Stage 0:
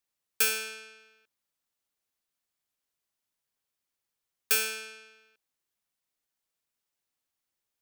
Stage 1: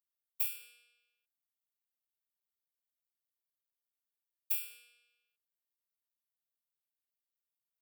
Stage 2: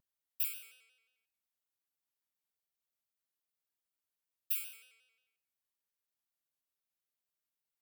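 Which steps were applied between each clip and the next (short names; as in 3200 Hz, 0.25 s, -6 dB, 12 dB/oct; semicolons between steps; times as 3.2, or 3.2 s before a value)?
pre-emphasis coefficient 0.97; fixed phaser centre 1300 Hz, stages 8; robotiser 240 Hz; gain -7 dB
on a send at -15 dB: reverb RT60 0.60 s, pre-delay 0.124 s; on the sum: shaped vibrato square 5.6 Hz, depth 100 cents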